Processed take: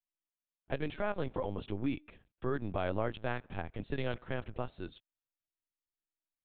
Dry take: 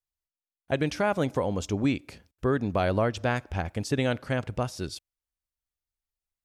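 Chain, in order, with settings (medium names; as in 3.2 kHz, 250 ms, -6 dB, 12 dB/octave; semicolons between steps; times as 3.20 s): LPC vocoder at 8 kHz pitch kept; trim -8.5 dB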